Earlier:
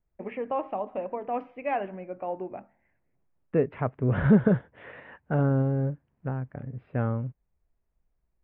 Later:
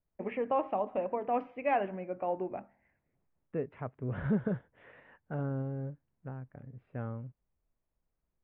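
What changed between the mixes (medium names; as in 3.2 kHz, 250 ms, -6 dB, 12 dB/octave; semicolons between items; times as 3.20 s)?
second voice -11.0 dB; reverb: off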